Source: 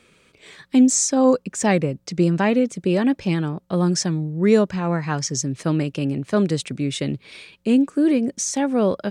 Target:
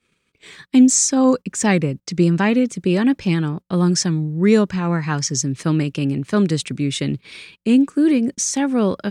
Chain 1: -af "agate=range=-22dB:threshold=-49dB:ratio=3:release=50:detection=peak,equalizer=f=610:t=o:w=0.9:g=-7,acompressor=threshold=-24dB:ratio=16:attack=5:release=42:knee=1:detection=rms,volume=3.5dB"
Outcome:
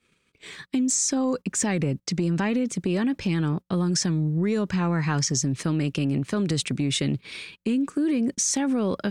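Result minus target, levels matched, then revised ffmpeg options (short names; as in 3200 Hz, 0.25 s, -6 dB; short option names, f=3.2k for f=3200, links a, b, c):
compressor: peak gain reduction +14 dB
-af "agate=range=-22dB:threshold=-49dB:ratio=3:release=50:detection=peak,equalizer=f=610:t=o:w=0.9:g=-7,volume=3.5dB"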